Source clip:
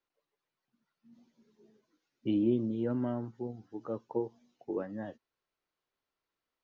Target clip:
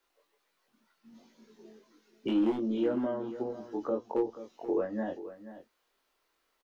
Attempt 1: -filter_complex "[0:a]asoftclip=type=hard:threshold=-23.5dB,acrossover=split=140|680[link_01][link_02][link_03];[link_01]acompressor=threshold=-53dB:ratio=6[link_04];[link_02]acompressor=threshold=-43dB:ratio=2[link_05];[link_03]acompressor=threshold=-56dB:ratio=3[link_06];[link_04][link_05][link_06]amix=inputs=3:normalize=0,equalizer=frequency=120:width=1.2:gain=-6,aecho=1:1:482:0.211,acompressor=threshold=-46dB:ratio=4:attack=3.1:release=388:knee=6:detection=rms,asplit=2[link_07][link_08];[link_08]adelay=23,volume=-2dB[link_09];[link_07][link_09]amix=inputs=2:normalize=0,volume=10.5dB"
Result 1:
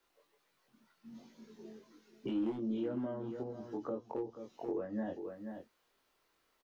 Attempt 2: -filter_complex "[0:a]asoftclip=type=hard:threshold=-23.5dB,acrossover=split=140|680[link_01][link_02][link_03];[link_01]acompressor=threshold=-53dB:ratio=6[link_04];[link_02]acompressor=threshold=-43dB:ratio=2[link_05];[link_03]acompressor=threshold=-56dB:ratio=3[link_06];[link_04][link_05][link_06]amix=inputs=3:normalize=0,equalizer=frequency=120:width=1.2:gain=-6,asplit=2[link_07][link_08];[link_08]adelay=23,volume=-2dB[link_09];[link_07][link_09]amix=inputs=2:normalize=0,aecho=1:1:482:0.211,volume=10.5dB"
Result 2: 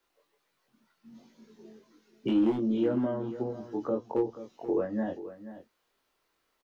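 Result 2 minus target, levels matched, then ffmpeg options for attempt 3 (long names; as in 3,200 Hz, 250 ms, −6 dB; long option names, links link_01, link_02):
125 Hz band +5.5 dB
-filter_complex "[0:a]asoftclip=type=hard:threshold=-23.5dB,acrossover=split=140|680[link_01][link_02][link_03];[link_01]acompressor=threshold=-53dB:ratio=6[link_04];[link_02]acompressor=threshold=-43dB:ratio=2[link_05];[link_03]acompressor=threshold=-56dB:ratio=3[link_06];[link_04][link_05][link_06]amix=inputs=3:normalize=0,equalizer=frequency=120:width=1.2:gain=-17,asplit=2[link_07][link_08];[link_08]adelay=23,volume=-2dB[link_09];[link_07][link_09]amix=inputs=2:normalize=0,aecho=1:1:482:0.211,volume=10.5dB"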